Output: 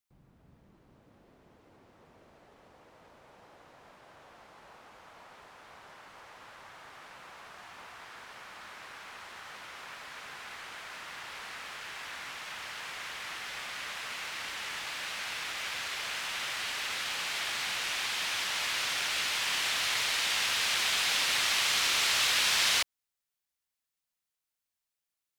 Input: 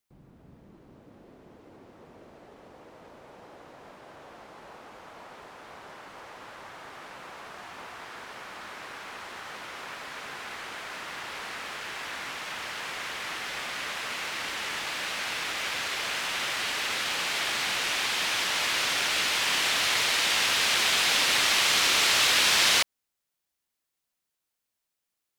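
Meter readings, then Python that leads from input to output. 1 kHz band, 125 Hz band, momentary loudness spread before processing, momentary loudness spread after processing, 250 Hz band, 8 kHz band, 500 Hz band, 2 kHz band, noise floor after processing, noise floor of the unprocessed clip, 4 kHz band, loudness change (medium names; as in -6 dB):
-6.0 dB, -6.5 dB, 22 LU, 22 LU, -10.0 dB, -4.5 dB, -8.5 dB, -5.0 dB, under -85 dBFS, -84 dBFS, -4.5 dB, -4.5 dB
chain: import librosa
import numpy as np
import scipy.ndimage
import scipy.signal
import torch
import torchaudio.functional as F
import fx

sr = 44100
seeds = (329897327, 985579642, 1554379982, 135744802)

y = fx.peak_eq(x, sr, hz=330.0, db=-6.0, octaves=2.1)
y = y * librosa.db_to_amplitude(-4.5)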